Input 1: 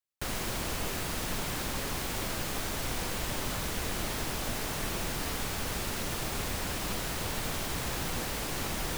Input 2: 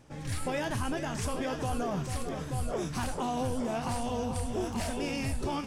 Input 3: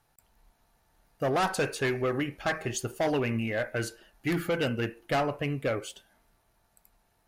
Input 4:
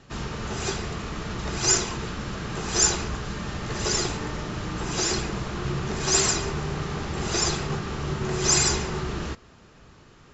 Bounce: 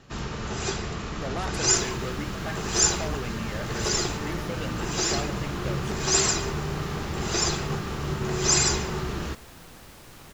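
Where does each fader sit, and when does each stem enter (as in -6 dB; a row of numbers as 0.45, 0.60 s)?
-14.5 dB, off, -7.5 dB, -0.5 dB; 1.55 s, off, 0.00 s, 0.00 s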